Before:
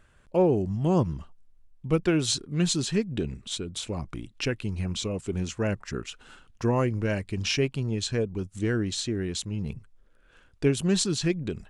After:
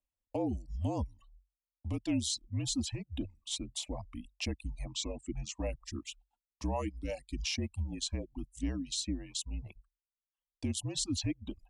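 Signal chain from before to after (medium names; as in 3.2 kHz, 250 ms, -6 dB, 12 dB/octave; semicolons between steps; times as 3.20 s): gate -46 dBFS, range -26 dB; reverb removal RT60 1 s; 4.89–5.60 s: steep low-pass 8.3 kHz 48 dB/octave; reverb removal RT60 0.87 s; peak limiter -20.5 dBFS, peak gain reduction 9 dB; static phaser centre 300 Hz, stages 8; frequency shift -47 Hz; trim -2 dB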